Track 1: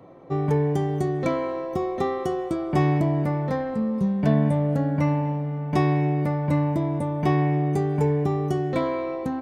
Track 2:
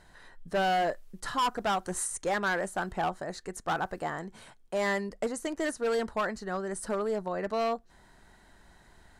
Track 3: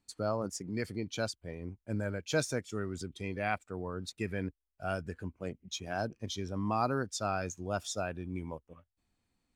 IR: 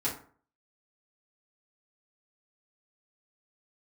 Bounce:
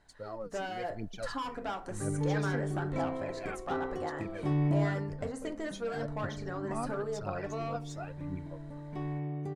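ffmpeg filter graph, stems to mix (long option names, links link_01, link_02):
-filter_complex "[0:a]adelay=1700,volume=-5.5dB,afade=type=out:start_time=4.79:duration=0.38:silence=0.266073,asplit=2[link_01][link_02];[link_02]volume=-18.5dB[link_03];[1:a]dynaudnorm=framelen=410:gausssize=3:maxgain=5.5dB,asubboost=boost=3:cutoff=65,acompressor=threshold=-26dB:ratio=6,volume=-11dB,asplit=2[link_04][link_05];[link_05]volume=-9.5dB[link_06];[2:a]aphaser=in_gain=1:out_gain=1:delay=4.6:decay=0.75:speed=0.96:type=triangular,volume=-11dB,asplit=2[link_07][link_08];[link_08]apad=whole_len=490108[link_09];[link_01][link_09]sidechaincompress=threshold=-54dB:ratio=3:attack=16:release=559[link_10];[3:a]atrim=start_sample=2205[link_11];[link_03][link_06]amix=inputs=2:normalize=0[link_12];[link_12][link_11]afir=irnorm=-1:irlink=0[link_13];[link_10][link_04][link_07][link_13]amix=inputs=4:normalize=0,highshelf=frequency=6600:gain=-10"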